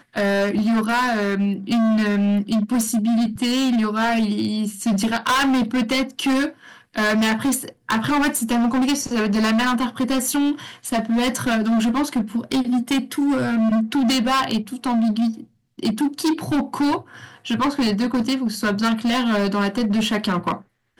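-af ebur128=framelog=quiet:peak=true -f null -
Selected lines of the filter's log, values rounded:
Integrated loudness:
  I:         -20.6 LUFS
  Threshold: -30.8 LUFS
Loudness range:
  LRA:         2.1 LU
  Threshold: -40.8 LUFS
  LRA low:   -22.0 LUFS
  LRA high:  -19.9 LUFS
True peak:
  Peak:      -12.4 dBFS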